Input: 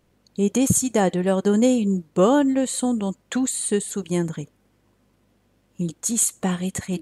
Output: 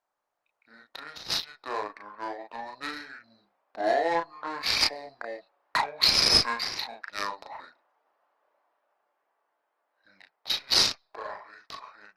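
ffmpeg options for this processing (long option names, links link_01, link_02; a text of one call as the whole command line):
ffmpeg -i in.wav -filter_complex "[0:a]highpass=frequency=1200:width=0.5412,highpass=frequency=1200:width=1.3066,equalizer=frequency=9100:width_type=o:width=0.35:gain=5,dynaudnorm=framelen=350:gausssize=7:maxgain=14dB,asplit=2[link_01][link_02];[link_02]volume=15dB,asoftclip=hard,volume=-15dB,volume=-11dB[link_03];[link_01][link_03]amix=inputs=2:normalize=0,adynamicsmooth=sensitivity=1:basefreq=1900,flanger=delay=16.5:depth=6.2:speed=0.37,asetrate=25442,aresample=44100" -ar 48000 -c:a libopus -b:a 32k out.opus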